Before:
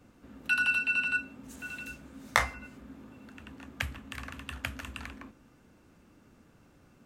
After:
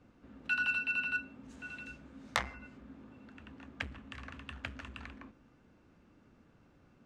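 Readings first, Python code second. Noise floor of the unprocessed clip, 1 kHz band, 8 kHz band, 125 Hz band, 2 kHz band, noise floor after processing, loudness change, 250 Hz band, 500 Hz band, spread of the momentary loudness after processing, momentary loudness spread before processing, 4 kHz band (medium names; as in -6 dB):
-61 dBFS, -6.5 dB, -9.0 dB, -6.0 dB, -5.5 dB, -65 dBFS, -5.5 dB, -4.0 dB, -6.0 dB, 22 LU, 23 LU, -5.0 dB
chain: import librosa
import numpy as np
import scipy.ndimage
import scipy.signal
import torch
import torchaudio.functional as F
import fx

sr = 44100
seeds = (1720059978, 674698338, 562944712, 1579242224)

y = fx.air_absorb(x, sr, metres=110.0)
y = fx.transformer_sat(y, sr, knee_hz=3800.0)
y = F.gain(torch.from_numpy(y), -3.5).numpy()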